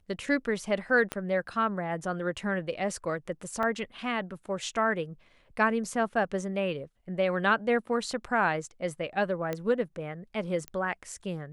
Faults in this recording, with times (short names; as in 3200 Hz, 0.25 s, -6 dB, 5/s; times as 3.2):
1.12 pop -16 dBFS
3.63 gap 2.8 ms
9.53 pop -18 dBFS
10.68 pop -22 dBFS